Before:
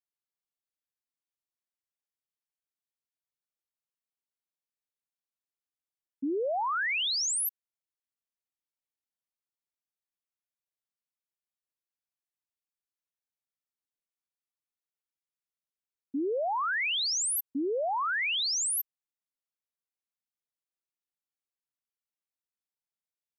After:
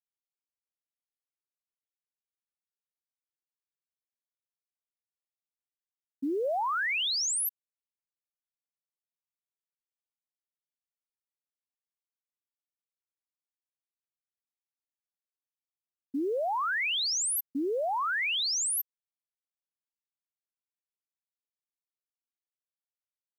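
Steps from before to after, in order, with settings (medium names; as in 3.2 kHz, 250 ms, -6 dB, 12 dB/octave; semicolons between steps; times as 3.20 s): 6.44–7.16 s: bass shelf 170 Hz +8.5 dB; companded quantiser 8-bit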